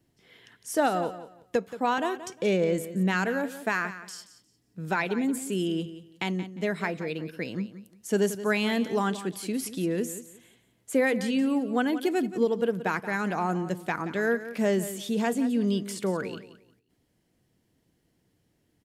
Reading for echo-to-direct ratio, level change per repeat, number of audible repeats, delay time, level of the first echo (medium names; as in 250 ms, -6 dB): -13.5 dB, -13.0 dB, 2, 177 ms, -13.5 dB